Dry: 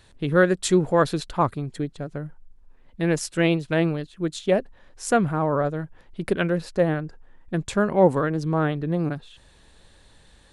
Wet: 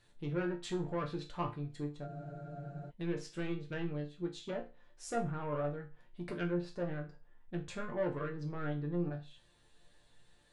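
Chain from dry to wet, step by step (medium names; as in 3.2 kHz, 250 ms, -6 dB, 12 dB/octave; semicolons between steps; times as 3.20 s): saturation -18.5 dBFS, distortion -9 dB; low-pass that closes with the level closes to 2.3 kHz, closed at -20.5 dBFS; chord resonator A#2 major, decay 0.3 s; spectral freeze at 2.09 s, 0.79 s; trim +1.5 dB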